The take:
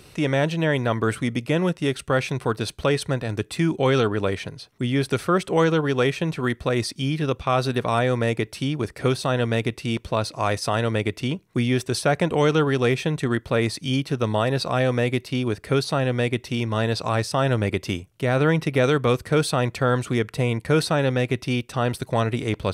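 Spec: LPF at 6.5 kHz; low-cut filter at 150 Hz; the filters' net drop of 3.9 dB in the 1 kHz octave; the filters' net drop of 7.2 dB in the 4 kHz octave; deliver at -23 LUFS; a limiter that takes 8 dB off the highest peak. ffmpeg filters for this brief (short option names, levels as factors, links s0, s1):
-af "highpass=150,lowpass=6500,equalizer=f=1000:t=o:g=-5,equalizer=f=4000:t=o:g=-8.5,volume=1.88,alimiter=limit=0.282:level=0:latency=1"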